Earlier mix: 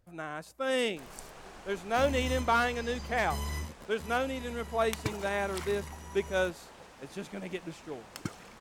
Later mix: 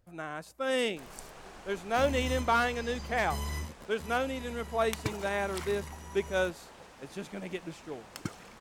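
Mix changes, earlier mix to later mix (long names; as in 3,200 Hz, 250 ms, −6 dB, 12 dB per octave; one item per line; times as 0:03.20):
nothing changed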